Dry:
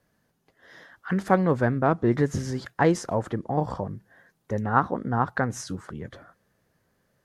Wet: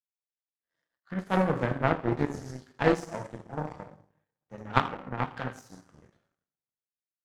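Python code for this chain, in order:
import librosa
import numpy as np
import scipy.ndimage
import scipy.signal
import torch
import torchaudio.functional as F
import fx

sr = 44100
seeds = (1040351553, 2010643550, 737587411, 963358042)

y = fx.rev_double_slope(x, sr, seeds[0], early_s=0.78, late_s=2.8, knee_db=-18, drr_db=-2.5)
y = fx.power_curve(y, sr, exponent=2.0)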